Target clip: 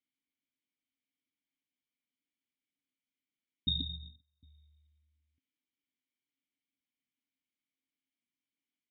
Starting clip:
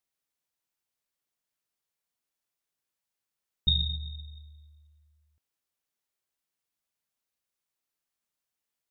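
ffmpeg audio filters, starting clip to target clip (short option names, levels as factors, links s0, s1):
-filter_complex "[0:a]asettb=1/sr,asplit=3[s0][s1][s2];[s0]atrim=end=3.804[s3];[s1]atrim=start=3.8:end=4.43,asetpts=PTS-STARTPTS,afade=t=in:d=0.004:c=qsin,afade=t=out:st=0.626:d=0.004:c=qsin,agate=range=0.0398:threshold=0.0141:ratio=16:detection=peak[s4];[s2]atrim=start=4.426[s5];[s3][s4]acrossfade=d=0.004:c1=hsin:c2=qsin[s6];[s6][s5]acrossfade=d=0.004:c1=qsin:c2=hsin,asplit=3[s7][s8][s9];[s7]bandpass=f=270:t=q:w=8,volume=1[s10];[s8]bandpass=f=2290:t=q:w=8,volume=0.501[s11];[s9]bandpass=f=3010:t=q:w=8,volume=0.355[s12];[s10][s11][s12]amix=inputs=3:normalize=0,equalizer=f=93:t=o:w=1.9:g=10,volume=2.66"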